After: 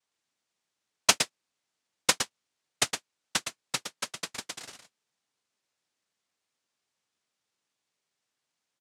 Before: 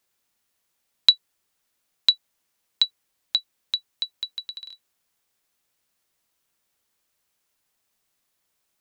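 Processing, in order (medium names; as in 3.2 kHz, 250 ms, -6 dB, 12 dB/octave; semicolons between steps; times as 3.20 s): delay 114 ms -7.5 dB; noise-vocoded speech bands 1; trim -5.5 dB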